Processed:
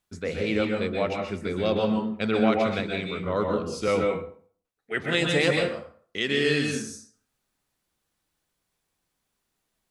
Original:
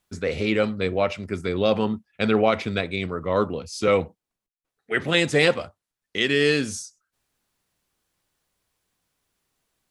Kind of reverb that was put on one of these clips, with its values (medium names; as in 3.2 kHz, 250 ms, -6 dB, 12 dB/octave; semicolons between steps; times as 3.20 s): plate-style reverb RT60 0.5 s, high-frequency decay 0.7×, pre-delay 115 ms, DRR 1.5 dB; trim -5 dB